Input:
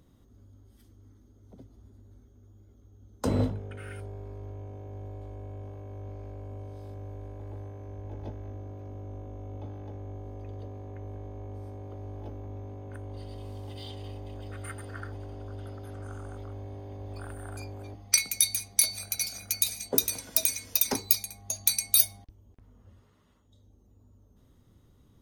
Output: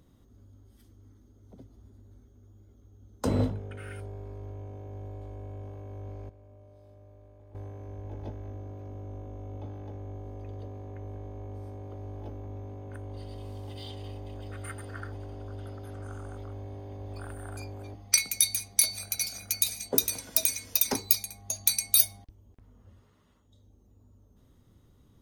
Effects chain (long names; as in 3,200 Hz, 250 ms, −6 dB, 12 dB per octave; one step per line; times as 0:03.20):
0:06.29–0:07.55: tuned comb filter 120 Hz, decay 1.9 s, mix 80%